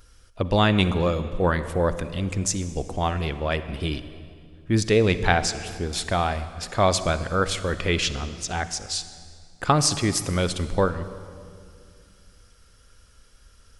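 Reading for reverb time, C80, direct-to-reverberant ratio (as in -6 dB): 2.3 s, 13.5 dB, 12.0 dB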